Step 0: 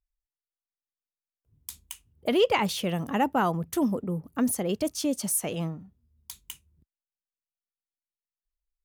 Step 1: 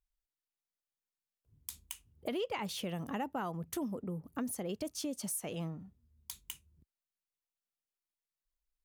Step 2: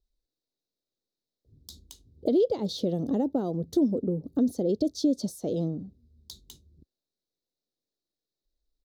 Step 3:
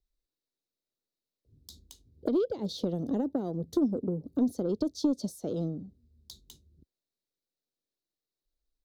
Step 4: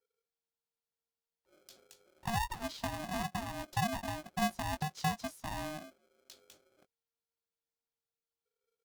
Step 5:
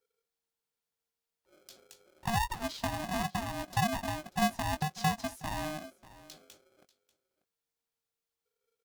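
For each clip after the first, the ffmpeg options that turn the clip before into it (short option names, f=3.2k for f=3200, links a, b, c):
-af "acompressor=threshold=-36dB:ratio=3,volume=-2dB"
-af "firequalizer=gain_entry='entry(170,0);entry(280,7);entry(530,4);entry(960,-16);entry(2600,-27);entry(3800,2);entry(9100,-18);entry(16000,-16)':delay=0.05:min_phase=1,volume=8.5dB"
-filter_complex "[0:a]aeval=exprs='0.2*(cos(1*acos(clip(val(0)/0.2,-1,1)))-cos(1*PI/2))+0.0224*(cos(3*acos(clip(val(0)/0.2,-1,1)))-cos(3*PI/2))':c=same,acrossover=split=350[a][b];[b]acompressor=threshold=-34dB:ratio=2.5[c];[a][c]amix=inputs=2:normalize=0"
-filter_complex "[0:a]asplit=2[a][b];[b]adelay=20,volume=-8dB[c];[a][c]amix=inputs=2:normalize=0,aeval=exprs='val(0)*sgn(sin(2*PI*460*n/s))':c=same,volume=-7.5dB"
-af "aecho=1:1:590:0.112,volume=3.5dB"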